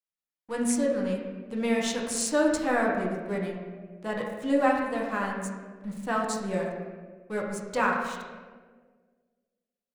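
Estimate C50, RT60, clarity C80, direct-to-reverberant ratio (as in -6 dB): 2.5 dB, 1.6 s, 4.5 dB, -2.5 dB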